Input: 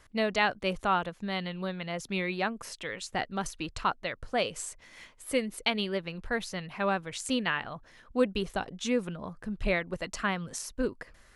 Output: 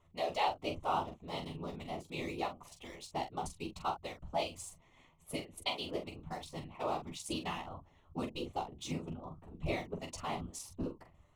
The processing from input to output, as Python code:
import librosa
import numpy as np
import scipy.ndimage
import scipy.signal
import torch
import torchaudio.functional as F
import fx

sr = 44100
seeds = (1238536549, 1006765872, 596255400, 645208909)

p1 = fx.wiener(x, sr, points=9)
p2 = fx.fixed_phaser(p1, sr, hz=320.0, stages=8)
p3 = fx.whisperise(p2, sr, seeds[0])
p4 = p3 + fx.room_early_taps(p3, sr, ms=(12, 44), db=(-6.0, -7.5), dry=0)
y = F.gain(torch.from_numpy(p4), -4.5).numpy()